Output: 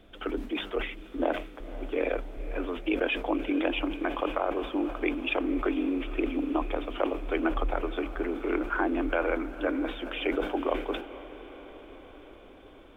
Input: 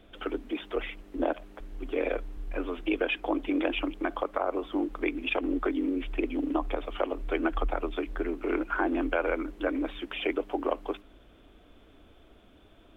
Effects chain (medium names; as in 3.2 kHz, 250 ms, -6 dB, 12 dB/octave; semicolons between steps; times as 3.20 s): echo that smears into a reverb 493 ms, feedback 68%, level -15 dB; decay stretcher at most 100 dB/s